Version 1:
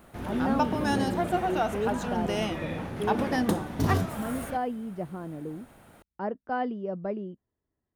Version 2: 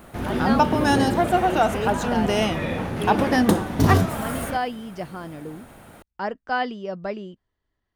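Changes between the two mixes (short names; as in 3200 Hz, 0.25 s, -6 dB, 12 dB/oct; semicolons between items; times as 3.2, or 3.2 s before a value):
speech: remove band-pass 240 Hz, Q 0.52; background +8.0 dB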